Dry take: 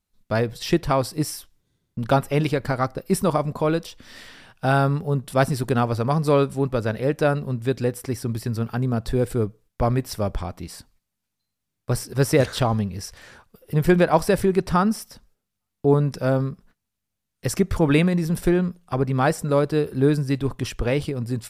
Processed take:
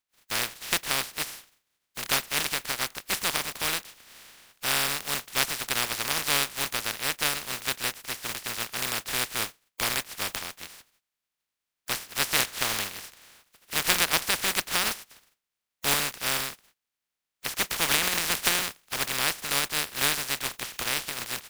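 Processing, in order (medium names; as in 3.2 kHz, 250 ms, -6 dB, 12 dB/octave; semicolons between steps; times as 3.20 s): spectral contrast reduction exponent 0.14; peaking EQ 2.2 kHz +5.5 dB 2.5 oct; 17.91–18.60 s: three bands compressed up and down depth 100%; trim -9.5 dB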